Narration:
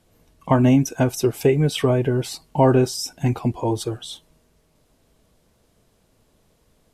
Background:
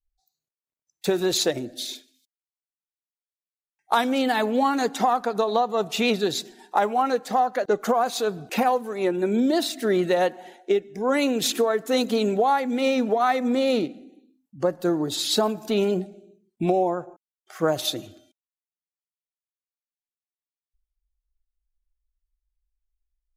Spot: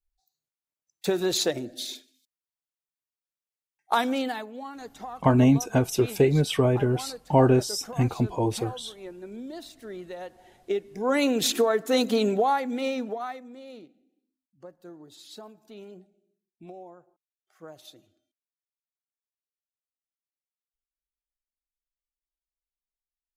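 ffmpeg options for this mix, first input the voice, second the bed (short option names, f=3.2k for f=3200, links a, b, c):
-filter_complex "[0:a]adelay=4750,volume=-3dB[a];[1:a]volume=14.5dB,afade=t=out:st=4.09:d=0.37:silence=0.177828,afade=t=in:st=10.29:d=0.98:silence=0.141254,afade=t=out:st=12.19:d=1.28:silence=0.0794328[b];[a][b]amix=inputs=2:normalize=0"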